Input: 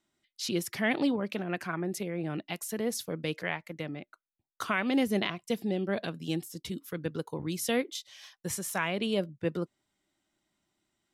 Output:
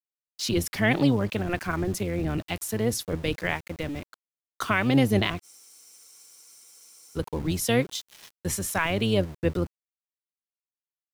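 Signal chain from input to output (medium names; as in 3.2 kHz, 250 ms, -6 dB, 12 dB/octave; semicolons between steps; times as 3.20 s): octave divider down 1 oct, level -2 dB; small samples zeroed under -45.5 dBFS; spectral freeze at 5.46 s, 1.70 s; trim +5 dB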